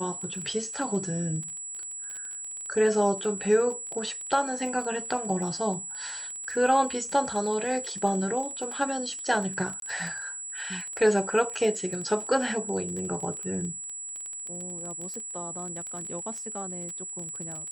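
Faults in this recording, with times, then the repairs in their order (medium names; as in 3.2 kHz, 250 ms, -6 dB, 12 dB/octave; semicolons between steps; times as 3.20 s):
crackle 23 per s -33 dBFS
whine 7.8 kHz -35 dBFS
9.80–9.82 s: dropout 22 ms
15.14 s: pop -25 dBFS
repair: de-click; band-stop 7.8 kHz, Q 30; interpolate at 9.80 s, 22 ms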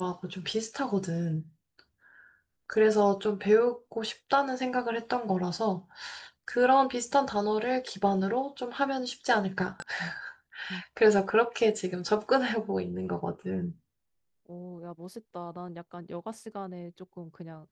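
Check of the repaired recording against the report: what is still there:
nothing left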